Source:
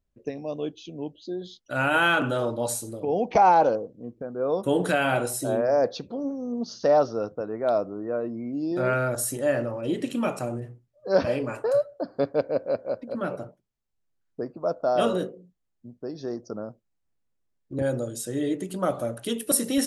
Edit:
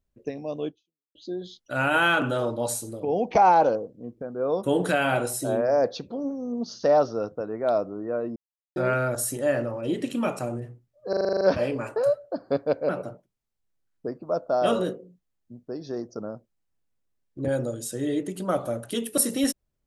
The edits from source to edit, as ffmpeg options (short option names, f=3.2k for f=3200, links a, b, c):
-filter_complex "[0:a]asplit=13[a][b][c][d][e][f][g][h][i][j][k][l][m];[a]atrim=end=1.15,asetpts=PTS-STARTPTS,afade=t=out:st=0.68:d=0.47:c=exp[n];[b]atrim=start=1.15:end=8.36,asetpts=PTS-STARTPTS,afade=t=in:d=0.004:c=hsin,afade=t=out:st=7.206:d=0.004:c=hsin[o];[c]atrim=start=8.36:end=8.76,asetpts=PTS-STARTPTS,volume=0[p];[d]atrim=start=8.76:end=11.132,asetpts=PTS-STARTPTS,afade=t=in:d=0.004:c=hsin[q];[e]atrim=start=11.088:end=11.132[r];[f]atrim=start=11.088:end=11.132[s];[g]atrim=start=11.088:end=11.132[t];[h]atrim=start=11.088:end=11.132[u];[i]atrim=start=11.088:end=11.132[v];[j]atrim=start=11.088:end=11.132[w];[k]atrim=start=11.088:end=11.132[x];[l]atrim=start=11.088:end=12.572[y];[m]atrim=start=13.228[z];[n][o][p][q]concat=n=4:v=0:a=1[aa];[aa][r]acrossfade=d=0.004:c1=hsin:c2=hsin[ab];[ab][s]acrossfade=d=0.004:c1=hsin:c2=hsin[ac];[ac][t]acrossfade=d=0.004:c1=hsin:c2=hsin[ad];[ad][u]acrossfade=d=0.004:c1=hsin:c2=hsin[ae];[ae][v]acrossfade=d=0.004:c1=hsin:c2=hsin[af];[af][w]acrossfade=d=0.004:c1=hsin:c2=hsin[ag];[ag][x]acrossfade=d=0.004:c1=hsin:c2=hsin[ah];[ah][y]acrossfade=d=0.004:c1=hsin:c2=hsin[ai];[ai][z]acrossfade=d=0.004:c1=hsin:c2=hsin"